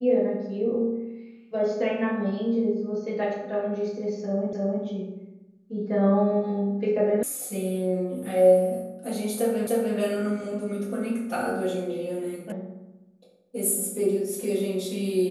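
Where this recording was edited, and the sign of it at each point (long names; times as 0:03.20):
0:04.53: the same again, the last 0.31 s
0:07.23: cut off before it has died away
0:09.67: the same again, the last 0.3 s
0:12.52: cut off before it has died away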